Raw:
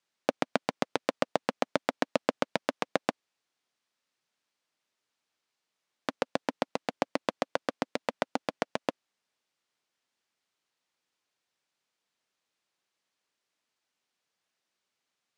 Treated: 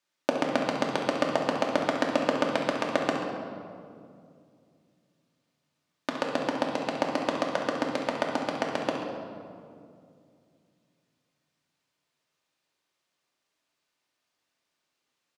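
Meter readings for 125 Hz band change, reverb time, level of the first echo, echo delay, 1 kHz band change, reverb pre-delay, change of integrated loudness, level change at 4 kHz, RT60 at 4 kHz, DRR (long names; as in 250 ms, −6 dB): +5.5 dB, 2.4 s, −9.0 dB, 67 ms, +4.0 dB, 3 ms, +4.0 dB, +3.5 dB, 1.3 s, −2.0 dB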